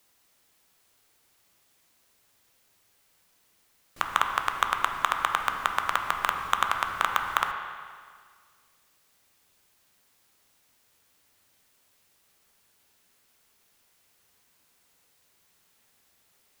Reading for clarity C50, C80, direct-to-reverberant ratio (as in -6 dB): 5.0 dB, 6.5 dB, 3.5 dB